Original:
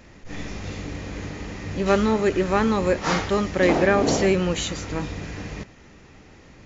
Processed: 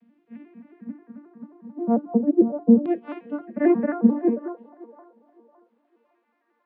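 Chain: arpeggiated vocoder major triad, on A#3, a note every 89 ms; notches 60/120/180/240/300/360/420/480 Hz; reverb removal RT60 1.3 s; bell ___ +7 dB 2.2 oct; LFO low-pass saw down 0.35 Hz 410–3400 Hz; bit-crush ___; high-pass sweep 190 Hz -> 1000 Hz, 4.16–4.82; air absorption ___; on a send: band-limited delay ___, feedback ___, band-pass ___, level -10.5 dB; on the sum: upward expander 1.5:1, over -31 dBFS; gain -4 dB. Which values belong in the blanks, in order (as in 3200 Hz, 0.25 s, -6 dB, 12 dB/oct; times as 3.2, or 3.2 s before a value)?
170 Hz, 10-bit, 340 m, 0.559 s, 32%, 750 Hz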